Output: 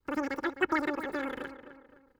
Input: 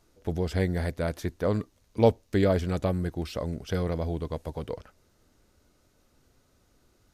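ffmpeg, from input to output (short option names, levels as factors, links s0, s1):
-filter_complex "[0:a]lowshelf=f=170:g=7.5,agate=range=0.0224:threshold=0.00316:ratio=3:detection=peak,equalizer=f=220:w=7.6:g=-9,aecho=1:1:7.5:0.47,asetrate=143325,aresample=44100,acrossover=split=4100[s0][s1];[s1]acompressor=threshold=0.00316:ratio=4:attack=1:release=60[s2];[s0][s2]amix=inputs=2:normalize=0,asplit=2[s3][s4];[s4]adelay=258,lowpass=f=2400:p=1,volume=0.266,asplit=2[s5][s6];[s6]adelay=258,lowpass=f=2400:p=1,volume=0.42,asplit=2[s7][s8];[s8]adelay=258,lowpass=f=2400:p=1,volume=0.42,asplit=2[s9][s10];[s10]adelay=258,lowpass=f=2400:p=1,volume=0.42[s11];[s3][s5][s7][s9][s11]amix=inputs=5:normalize=0,volume=0.422"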